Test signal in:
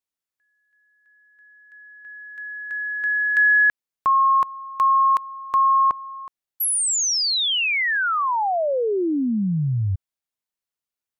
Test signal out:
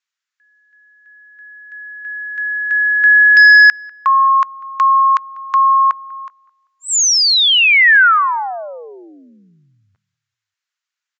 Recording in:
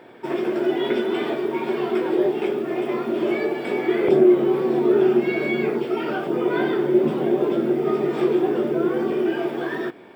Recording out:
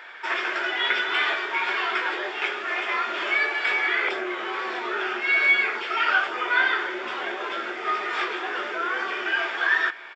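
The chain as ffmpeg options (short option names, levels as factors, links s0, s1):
-filter_complex "[0:a]asplit=2[s0][s1];[s1]alimiter=limit=0.178:level=0:latency=1:release=474,volume=1.26[s2];[s0][s2]amix=inputs=2:normalize=0,highpass=f=1500:t=q:w=1.7,volume=1.78,asoftclip=hard,volume=0.562,asplit=2[s3][s4];[s4]adelay=195,lowpass=f=1900:p=1,volume=0.0794,asplit=2[s5][s6];[s6]adelay=195,lowpass=f=1900:p=1,volume=0.46,asplit=2[s7][s8];[s8]adelay=195,lowpass=f=1900:p=1,volume=0.46[s9];[s3][s5][s7][s9]amix=inputs=4:normalize=0,aresample=16000,aresample=44100,volume=1.19"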